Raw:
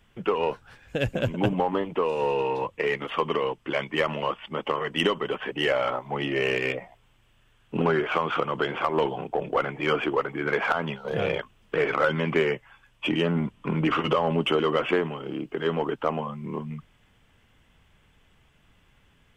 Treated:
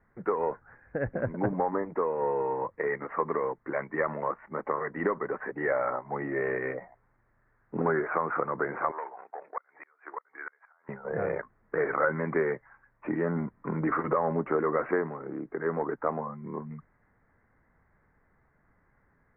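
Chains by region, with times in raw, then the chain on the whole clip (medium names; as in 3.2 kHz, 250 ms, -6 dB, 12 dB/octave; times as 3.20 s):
8.91–10.89 s: high-pass 1.1 kHz + inverted gate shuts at -19 dBFS, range -34 dB
whole clip: steep low-pass 2 kHz 72 dB/octave; bass shelf 190 Hz -6 dB; trim -2.5 dB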